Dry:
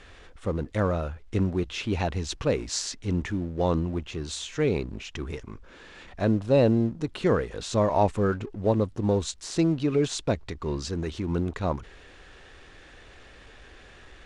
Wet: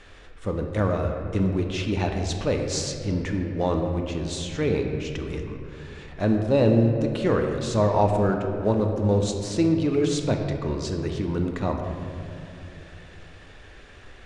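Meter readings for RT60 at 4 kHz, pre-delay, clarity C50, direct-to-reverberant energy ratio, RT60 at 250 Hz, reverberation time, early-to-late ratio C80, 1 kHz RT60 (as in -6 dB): 1.5 s, 3 ms, 4.5 dB, 3.0 dB, 3.2 s, 2.7 s, 5.5 dB, 2.4 s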